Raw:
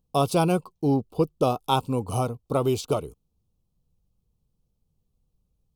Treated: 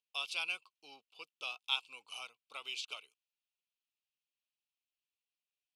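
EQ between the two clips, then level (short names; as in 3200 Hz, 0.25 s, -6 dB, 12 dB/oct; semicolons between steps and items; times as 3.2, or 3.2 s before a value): ladder band-pass 2900 Hz, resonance 60%; +6.5 dB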